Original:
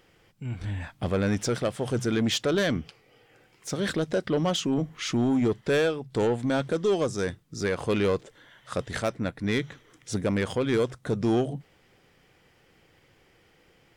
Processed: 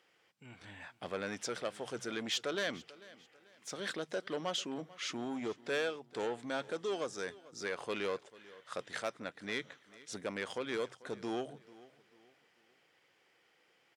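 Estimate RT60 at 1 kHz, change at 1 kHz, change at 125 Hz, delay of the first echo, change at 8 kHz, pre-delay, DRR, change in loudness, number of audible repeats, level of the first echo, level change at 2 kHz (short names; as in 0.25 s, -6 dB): none, -8.0 dB, -23.0 dB, 0.442 s, -8.5 dB, none, none, -11.5 dB, 2, -20.0 dB, -7.0 dB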